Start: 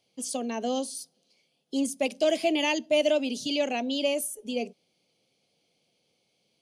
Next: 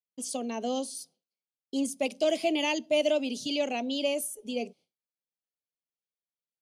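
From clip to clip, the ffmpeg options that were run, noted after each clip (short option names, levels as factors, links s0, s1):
-af "agate=range=0.0224:threshold=0.00355:ratio=3:detection=peak,equalizer=f=1700:w=5.3:g=-5.5,volume=0.794"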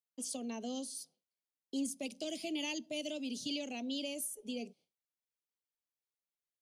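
-filter_complex "[0:a]acrossover=split=310|3000[s0][s1][s2];[s1]acompressor=threshold=0.00891:ratio=6[s3];[s0][s3][s2]amix=inputs=3:normalize=0,volume=0.596"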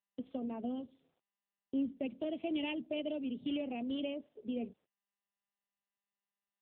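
-af "agate=range=0.224:threshold=0.00141:ratio=16:detection=peak,adynamicsmooth=sensitivity=4:basefreq=1800,volume=1.68" -ar 8000 -c:a libopencore_amrnb -b:a 6700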